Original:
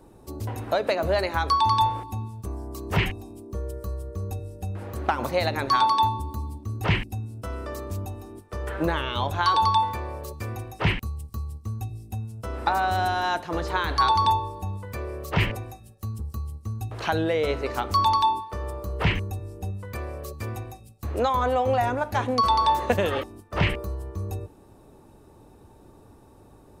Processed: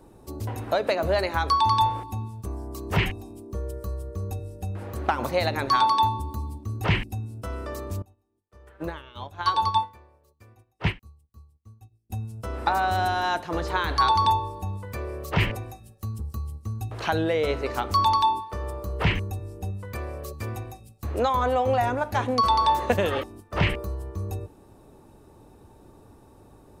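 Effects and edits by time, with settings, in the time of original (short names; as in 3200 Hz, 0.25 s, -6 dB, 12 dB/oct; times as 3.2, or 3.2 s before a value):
8.02–12.1 upward expander 2.5:1, over -40 dBFS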